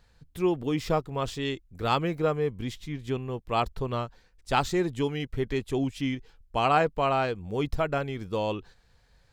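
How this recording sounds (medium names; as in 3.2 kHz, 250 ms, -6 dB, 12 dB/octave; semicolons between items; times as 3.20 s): noise floor -63 dBFS; spectral tilt -5.0 dB/octave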